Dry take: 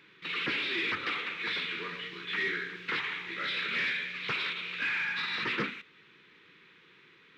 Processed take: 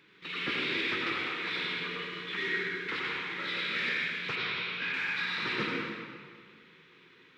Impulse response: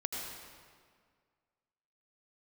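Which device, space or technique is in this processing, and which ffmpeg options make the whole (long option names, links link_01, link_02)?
stairwell: -filter_complex "[1:a]atrim=start_sample=2205[link_01];[0:a][link_01]afir=irnorm=-1:irlink=0,asplit=3[link_02][link_03][link_04];[link_02]afade=type=out:start_time=4.35:duration=0.02[link_05];[link_03]lowpass=frequency=5700:width=0.5412,lowpass=frequency=5700:width=1.3066,afade=type=in:start_time=4.35:duration=0.02,afade=type=out:start_time=4.92:duration=0.02[link_06];[link_04]afade=type=in:start_time=4.92:duration=0.02[link_07];[link_05][link_06][link_07]amix=inputs=3:normalize=0,equalizer=frequency=2000:width_type=o:width=2.1:gain=-3"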